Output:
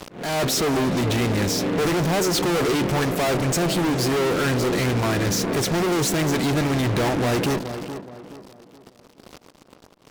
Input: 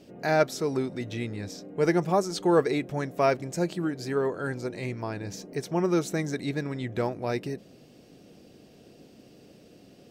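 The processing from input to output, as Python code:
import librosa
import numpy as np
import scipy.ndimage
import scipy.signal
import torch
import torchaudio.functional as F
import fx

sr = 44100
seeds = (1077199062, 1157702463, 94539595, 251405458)

y = fx.fuzz(x, sr, gain_db=49.0, gate_db=-49.0)
y = fx.auto_swell(y, sr, attack_ms=341.0)
y = fx.echo_tape(y, sr, ms=422, feedback_pct=43, wet_db=-7.0, lp_hz=1400.0, drive_db=13.0, wow_cents=18)
y = y * librosa.db_to_amplitude(-7.0)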